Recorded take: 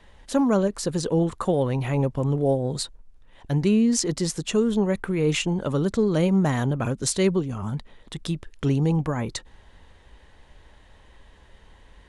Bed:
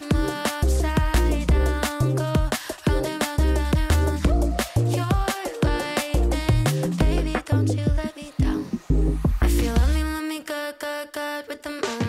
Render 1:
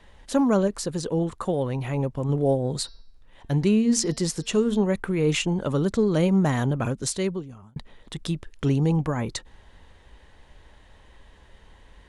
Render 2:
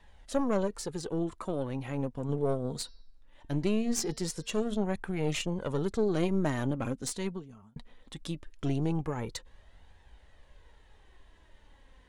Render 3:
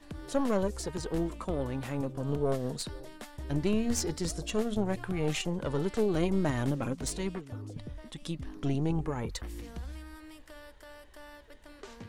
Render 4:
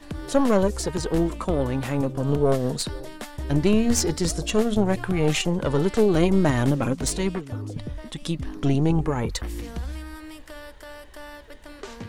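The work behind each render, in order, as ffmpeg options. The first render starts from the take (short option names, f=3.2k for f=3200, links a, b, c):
-filter_complex "[0:a]asettb=1/sr,asplit=3[a][b][c];[a]atrim=end=2.804[d];[b]atrim=start=2.8:end=4.84,asetpts=PTS-STARTPTS,afade=t=in:d=0.004:c=qsin,afade=t=out:st=2.036:d=0.004:c=qsin,bandreject=f=227.7:t=h:w=4,bandreject=f=455.4:t=h:w=4,bandreject=f=683.1:t=h:w=4,bandreject=f=910.8:t=h:w=4,bandreject=f=1.1385k:t=h:w=4,bandreject=f=1.3662k:t=h:w=4,bandreject=f=1.5939k:t=h:w=4,bandreject=f=1.8216k:t=h:w=4,bandreject=f=2.0493k:t=h:w=4,bandreject=f=2.277k:t=h:w=4,bandreject=f=2.5047k:t=h:w=4,bandreject=f=2.7324k:t=h:w=4,bandreject=f=2.9601k:t=h:w=4,bandreject=f=3.1878k:t=h:w=4,bandreject=f=3.4155k:t=h:w=4,bandreject=f=3.6432k:t=h:w=4,bandreject=f=3.8709k:t=h:w=4,bandreject=f=4.0986k:t=h:w=4,bandreject=f=4.3263k:t=h:w=4,bandreject=f=4.554k:t=h:w=4,bandreject=f=4.7817k:t=h:w=4,bandreject=f=5.0094k:t=h:w=4,bandreject=f=5.2371k:t=h:w=4,bandreject=f=5.4648k:t=h:w=4,bandreject=f=5.6925k:t=h:w=4[e];[c]atrim=start=4.836[f];[d][e]acrossfade=d=0.004:c1=hsin:c2=qsin[g];[g][f]acrossfade=d=0.004:c1=qsin:c2=hsin,asplit=4[h][i][j][k];[h]atrim=end=0.832[l];[i]atrim=start=0.828:end=2.292,asetpts=PTS-STARTPTS,volume=-3dB[m];[j]atrim=start=2.288:end=7.76,asetpts=PTS-STARTPTS,afade=t=out:st=4.532:d=0.94[n];[k]atrim=start=7.76,asetpts=PTS-STARTPTS,afade=t=in:d=0.004:c=hsin[o];[l][m]acrossfade=d=0.004:c1=hsin:c2=hsin[p];[n][o]concat=n=2:v=0:a=1[q];[p][q]acrossfade=d=0.004:c1=hsin:c2=hsin"
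-af "aeval=exprs='(tanh(5.01*val(0)+0.65)-tanh(0.65))/5.01':c=same,flanger=delay=1.1:depth=3.5:regen=51:speed=0.2:shape=triangular"
-filter_complex "[1:a]volume=-21.5dB[a];[0:a][a]amix=inputs=2:normalize=0"
-af "volume=9dB"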